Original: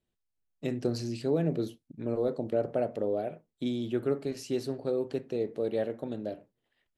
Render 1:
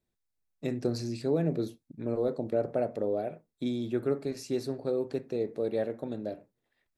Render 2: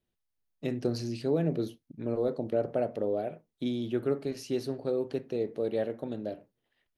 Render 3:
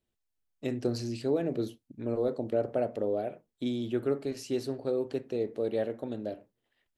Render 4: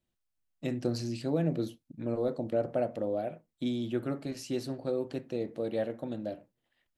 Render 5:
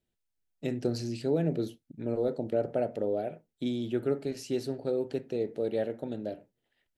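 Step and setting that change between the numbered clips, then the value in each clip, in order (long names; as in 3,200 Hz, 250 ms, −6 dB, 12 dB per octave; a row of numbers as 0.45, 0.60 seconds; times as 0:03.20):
notch filter, centre frequency: 3,000, 7,600, 160, 420, 1,100 Hertz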